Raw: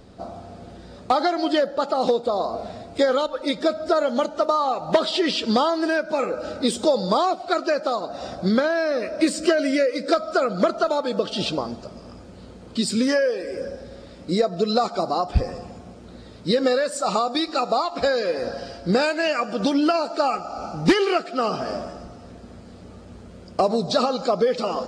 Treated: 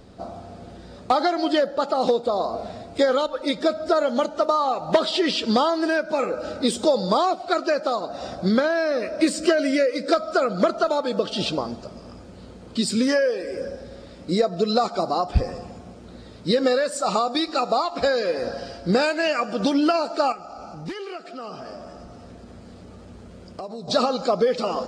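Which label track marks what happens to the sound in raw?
20.320000	23.880000	compressor 2.5:1, threshold -38 dBFS

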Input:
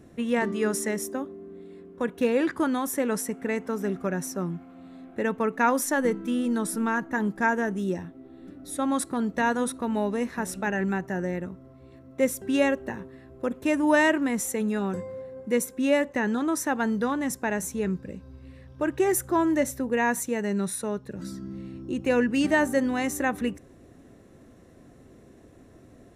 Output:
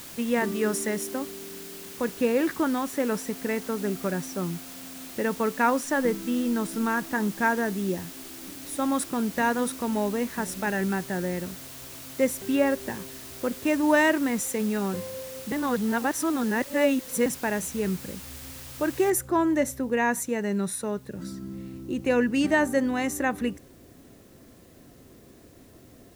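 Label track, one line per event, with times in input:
1.450000	6.770000	air absorption 56 m
12.410000	13.010000	treble ducked by the level closes to 1900 Hz, closed at -18 dBFS
15.520000	17.260000	reverse
19.100000	19.100000	noise floor step -43 dB -61 dB

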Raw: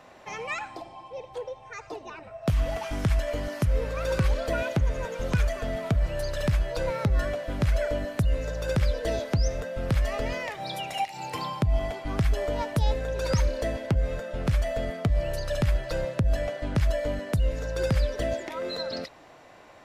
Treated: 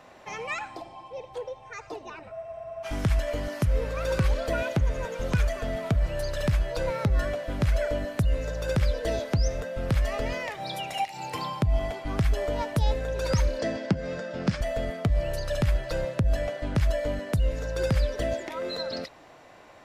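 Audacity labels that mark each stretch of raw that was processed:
2.340000	2.340000	spectral freeze 0.51 s
13.590000	14.610000	speaker cabinet 140–7600 Hz, peaks and dips at 190 Hz +9 dB, 300 Hz +5 dB, 1600 Hz +3 dB, 5000 Hz +8 dB

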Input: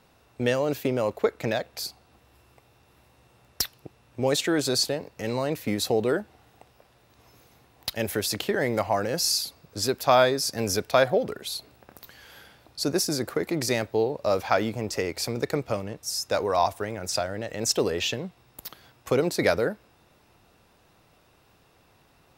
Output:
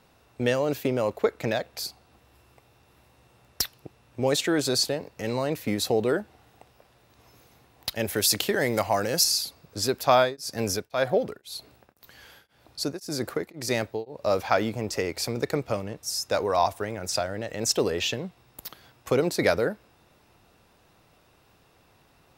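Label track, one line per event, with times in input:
8.160000	9.240000	high shelf 3600 Hz +9 dB
10.110000	14.340000	beating tremolo nulls at 1.9 Hz

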